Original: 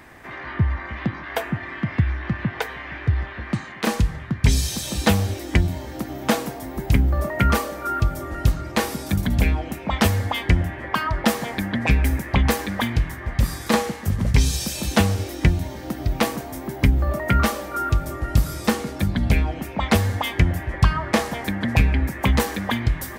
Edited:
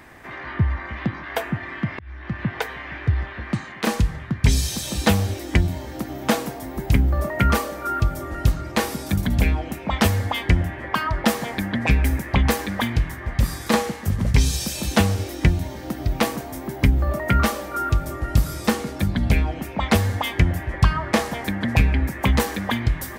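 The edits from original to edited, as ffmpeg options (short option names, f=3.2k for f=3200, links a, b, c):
-filter_complex "[0:a]asplit=2[a][b];[a]atrim=end=1.99,asetpts=PTS-STARTPTS,afade=t=out:st=1.986:d=0.004:c=hsin[c];[b]atrim=start=1.99,asetpts=PTS-STARTPTS,afade=t=in:d=0.49[d];[c][d]concat=n=2:v=0:a=1"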